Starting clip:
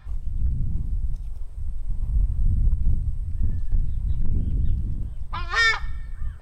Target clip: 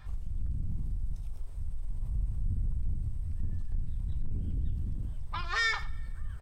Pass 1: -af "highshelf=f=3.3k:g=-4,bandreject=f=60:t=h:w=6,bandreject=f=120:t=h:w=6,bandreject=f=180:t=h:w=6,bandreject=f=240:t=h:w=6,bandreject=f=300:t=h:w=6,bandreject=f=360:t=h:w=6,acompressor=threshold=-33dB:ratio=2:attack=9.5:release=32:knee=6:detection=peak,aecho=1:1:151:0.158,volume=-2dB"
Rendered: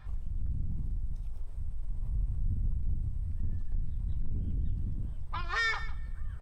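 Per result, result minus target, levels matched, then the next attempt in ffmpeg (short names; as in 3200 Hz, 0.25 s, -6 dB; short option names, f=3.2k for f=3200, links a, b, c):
echo 63 ms late; 8000 Hz band -4.5 dB
-af "highshelf=f=3.3k:g=-4,bandreject=f=60:t=h:w=6,bandreject=f=120:t=h:w=6,bandreject=f=180:t=h:w=6,bandreject=f=240:t=h:w=6,bandreject=f=300:t=h:w=6,bandreject=f=360:t=h:w=6,acompressor=threshold=-33dB:ratio=2:attack=9.5:release=32:knee=6:detection=peak,aecho=1:1:88:0.158,volume=-2dB"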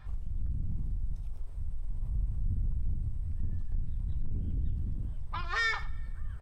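8000 Hz band -4.5 dB
-af "highshelf=f=3.3k:g=3,bandreject=f=60:t=h:w=6,bandreject=f=120:t=h:w=6,bandreject=f=180:t=h:w=6,bandreject=f=240:t=h:w=6,bandreject=f=300:t=h:w=6,bandreject=f=360:t=h:w=6,acompressor=threshold=-33dB:ratio=2:attack=9.5:release=32:knee=6:detection=peak,aecho=1:1:88:0.158,volume=-2dB"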